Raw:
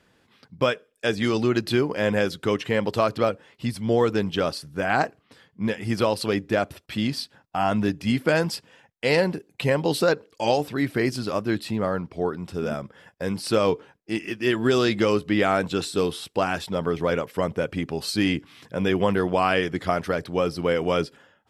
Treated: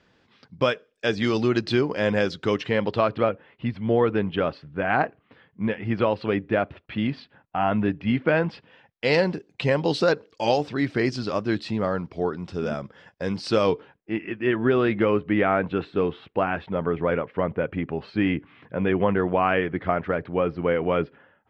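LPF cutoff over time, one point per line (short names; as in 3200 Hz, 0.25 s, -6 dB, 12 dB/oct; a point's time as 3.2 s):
LPF 24 dB/oct
2.55 s 6000 Hz
3.3 s 2900 Hz
8.49 s 2900 Hz
9.14 s 6100 Hz
13.62 s 6100 Hz
14.13 s 2500 Hz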